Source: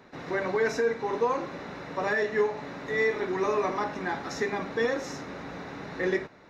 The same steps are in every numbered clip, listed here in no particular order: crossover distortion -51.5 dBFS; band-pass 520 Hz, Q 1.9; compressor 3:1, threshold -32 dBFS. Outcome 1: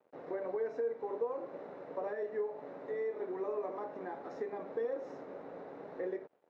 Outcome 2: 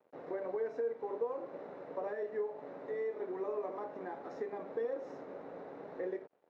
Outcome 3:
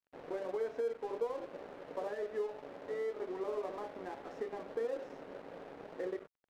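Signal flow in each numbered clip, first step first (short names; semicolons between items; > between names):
crossover distortion > compressor > band-pass; compressor > crossover distortion > band-pass; compressor > band-pass > crossover distortion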